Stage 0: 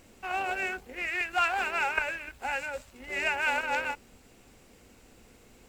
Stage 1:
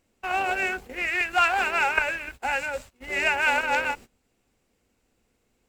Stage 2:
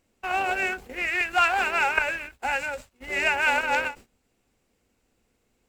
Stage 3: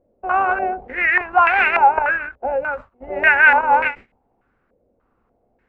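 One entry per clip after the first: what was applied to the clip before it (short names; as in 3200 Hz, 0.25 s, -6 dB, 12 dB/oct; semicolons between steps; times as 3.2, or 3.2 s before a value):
gate -46 dBFS, range -20 dB; gain +5.5 dB
ending taper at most 250 dB/s
stepped low-pass 3.4 Hz 580–2100 Hz; gain +4 dB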